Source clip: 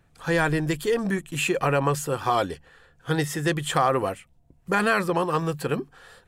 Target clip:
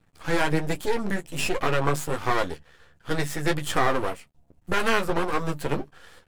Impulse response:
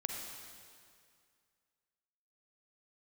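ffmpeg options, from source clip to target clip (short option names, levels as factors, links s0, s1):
-af "aeval=exprs='max(val(0),0)':c=same,flanger=delay=9.9:depth=4.7:regen=-22:speed=1.3:shape=triangular,volume=2"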